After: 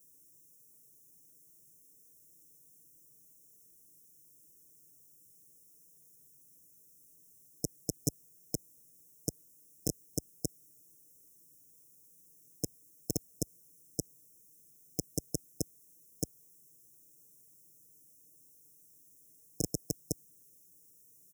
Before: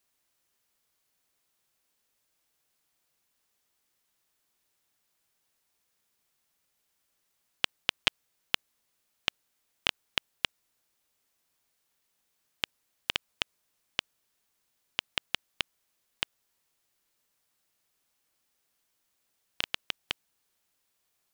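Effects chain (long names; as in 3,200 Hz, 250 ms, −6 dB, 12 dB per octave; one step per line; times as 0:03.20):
linear-phase brick-wall band-stop 740–5,200 Hz
comb filter 6.5 ms, depth 95%
brickwall limiter −23.5 dBFS, peak gain reduction 6 dB
high-pass filter 56 Hz
phaser with its sweep stopped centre 1,700 Hz, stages 4
level +14.5 dB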